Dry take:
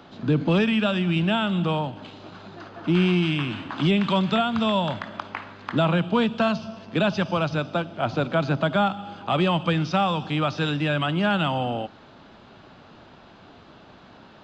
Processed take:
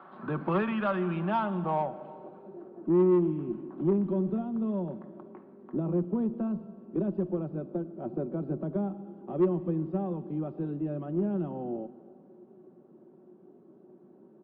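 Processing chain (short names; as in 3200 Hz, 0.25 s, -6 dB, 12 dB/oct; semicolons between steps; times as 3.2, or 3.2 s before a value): HPF 140 Hz 24 dB/oct; low shelf 440 Hz -8 dB; comb 5.3 ms, depth 44%; low-pass sweep 1200 Hz -> 350 Hz, 1.06–2.88; resonator 360 Hz, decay 0.24 s, harmonics odd, mix 60%; soft clip -20 dBFS, distortion -17 dB; added harmonics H 6 -34 dB, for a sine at -20 dBFS; on a send at -17 dB: reverb RT60 2.2 s, pre-delay 0.108 s; on the sum: downsampling 11025 Hz; gain +3.5 dB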